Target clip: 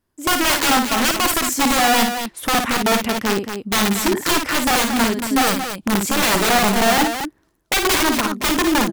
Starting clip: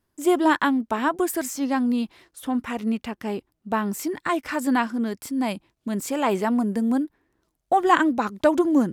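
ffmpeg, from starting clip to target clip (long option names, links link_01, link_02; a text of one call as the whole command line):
ffmpeg -i in.wav -af "dynaudnorm=framelen=120:gausssize=7:maxgain=8.5dB,aeval=exprs='(mod(4.22*val(0)+1,2)-1)/4.22':channel_layout=same,aecho=1:1:55.39|227.4:0.501|0.398" out.wav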